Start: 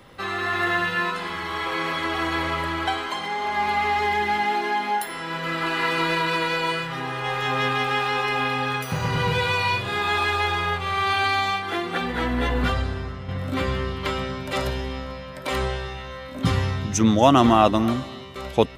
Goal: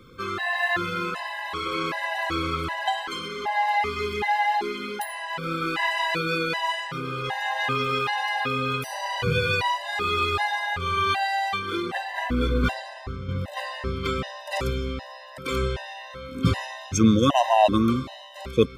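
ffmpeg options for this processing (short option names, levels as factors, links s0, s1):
-af "afftfilt=real='re*gt(sin(2*PI*1.3*pts/sr)*(1-2*mod(floor(b*sr/1024/520),2)),0)':imag='im*gt(sin(2*PI*1.3*pts/sr)*(1-2*mod(floor(b*sr/1024/520),2)),0)':win_size=1024:overlap=0.75,volume=1.12"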